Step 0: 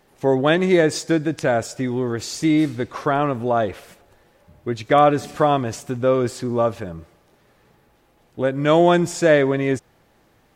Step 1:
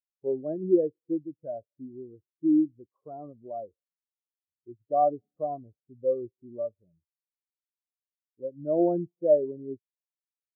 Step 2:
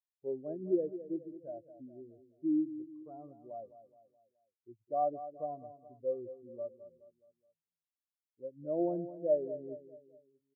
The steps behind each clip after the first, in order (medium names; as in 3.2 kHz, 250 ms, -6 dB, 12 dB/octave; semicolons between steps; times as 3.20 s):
low-pass 1 kHz 12 dB/octave; spectral contrast expander 2.5:1; trim -5.5 dB
feedback delay 211 ms, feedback 45%, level -13 dB; trim -8.5 dB